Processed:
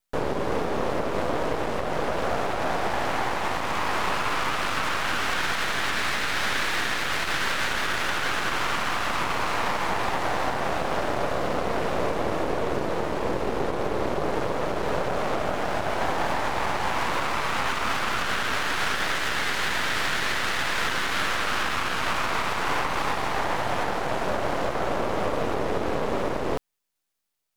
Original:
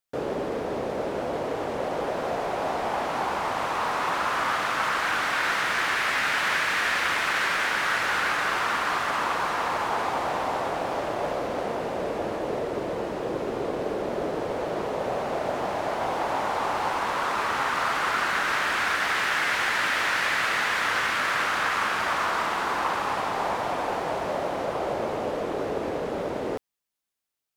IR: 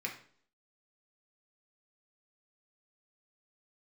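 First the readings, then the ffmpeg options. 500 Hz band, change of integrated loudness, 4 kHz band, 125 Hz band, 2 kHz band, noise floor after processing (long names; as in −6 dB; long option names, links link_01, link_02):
+0.5 dB, −0.5 dB, +2.0 dB, +6.0 dB, −1.5 dB, −28 dBFS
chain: -af "aeval=exprs='max(val(0),0)':channel_layout=same,alimiter=limit=-21dB:level=0:latency=1:release=206,volume=8dB"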